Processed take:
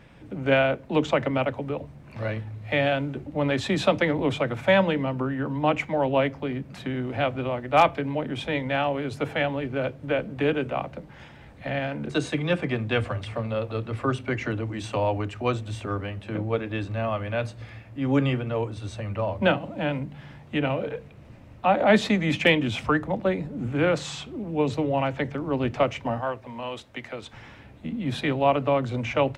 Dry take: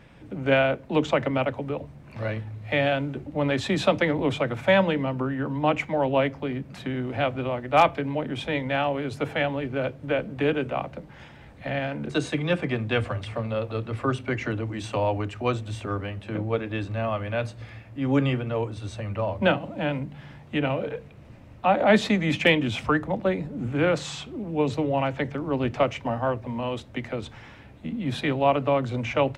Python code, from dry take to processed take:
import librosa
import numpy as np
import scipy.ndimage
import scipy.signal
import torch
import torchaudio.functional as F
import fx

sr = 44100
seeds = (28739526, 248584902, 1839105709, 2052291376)

y = fx.low_shelf(x, sr, hz=410.0, db=-11.0, at=(26.21, 27.33))